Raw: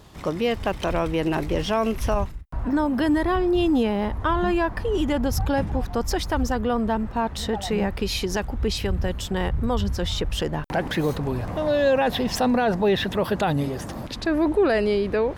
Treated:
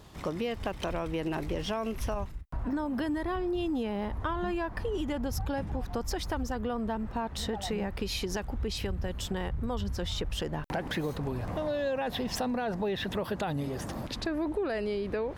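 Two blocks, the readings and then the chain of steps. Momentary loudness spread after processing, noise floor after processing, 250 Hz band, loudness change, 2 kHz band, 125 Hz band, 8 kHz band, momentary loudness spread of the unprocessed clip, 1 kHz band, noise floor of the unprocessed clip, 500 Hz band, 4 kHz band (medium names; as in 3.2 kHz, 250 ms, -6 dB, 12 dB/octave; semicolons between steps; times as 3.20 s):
4 LU, -42 dBFS, -9.5 dB, -9.0 dB, -9.5 dB, -8.0 dB, -6.5 dB, 7 LU, -9.5 dB, -35 dBFS, -10.0 dB, -7.5 dB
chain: compression 4:1, threshold -26 dBFS, peak gain reduction 9 dB; trim -3.5 dB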